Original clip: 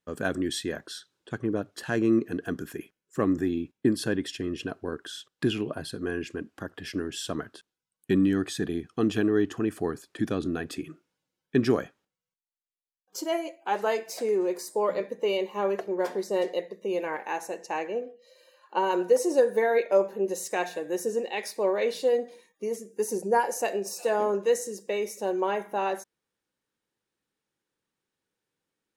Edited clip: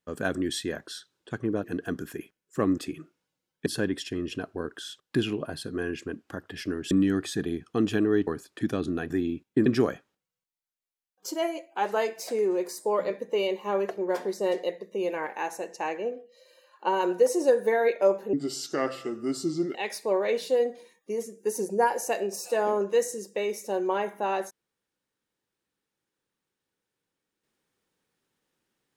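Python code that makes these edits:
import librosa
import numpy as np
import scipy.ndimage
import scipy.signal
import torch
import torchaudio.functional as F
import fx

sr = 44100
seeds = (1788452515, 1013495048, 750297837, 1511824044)

y = fx.edit(x, sr, fx.cut(start_s=1.64, length_s=0.6),
    fx.swap(start_s=3.38, length_s=0.56, other_s=10.68, other_length_s=0.88),
    fx.cut(start_s=7.19, length_s=0.95),
    fx.cut(start_s=9.5, length_s=0.35),
    fx.speed_span(start_s=20.23, length_s=1.05, speed=0.74), tone=tone)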